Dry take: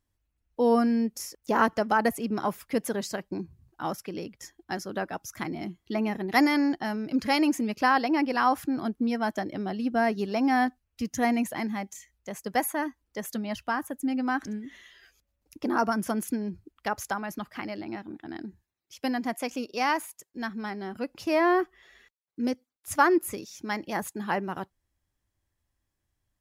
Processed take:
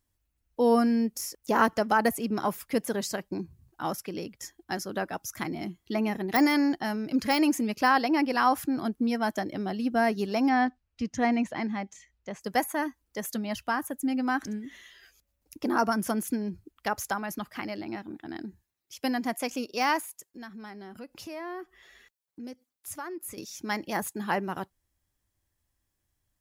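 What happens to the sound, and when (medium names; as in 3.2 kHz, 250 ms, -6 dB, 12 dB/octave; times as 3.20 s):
10.49–12.41 s: distance through air 130 m
20.00–23.38 s: compression 2.5:1, threshold -44 dBFS
whole clip: de-esser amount 65%; treble shelf 6.3 kHz +7 dB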